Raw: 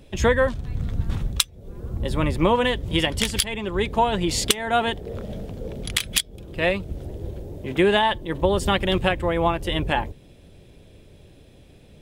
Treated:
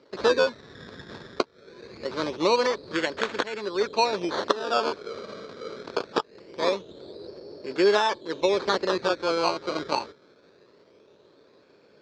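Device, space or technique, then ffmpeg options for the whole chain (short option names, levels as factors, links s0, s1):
circuit-bent sampling toy: -af "acrusher=samples=17:mix=1:aa=0.000001:lfo=1:lforange=17:lforate=0.23,highpass=410,equalizer=f=420:t=q:w=4:g=4,equalizer=f=760:t=q:w=4:g=-7,equalizer=f=2000:t=q:w=4:g=-7,equalizer=f=2900:t=q:w=4:g=-9,equalizer=f=4200:t=q:w=4:g=5,lowpass=f=4900:w=0.5412,lowpass=f=4900:w=1.3066"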